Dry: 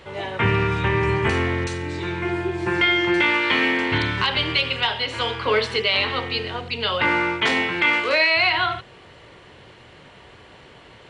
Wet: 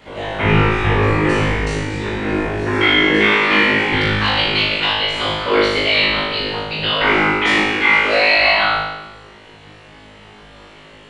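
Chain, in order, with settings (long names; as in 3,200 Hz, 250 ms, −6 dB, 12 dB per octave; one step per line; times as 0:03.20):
random phases in short frames
on a send: flutter between parallel walls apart 3.3 metres, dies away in 1 s
on the sum: level −1 dB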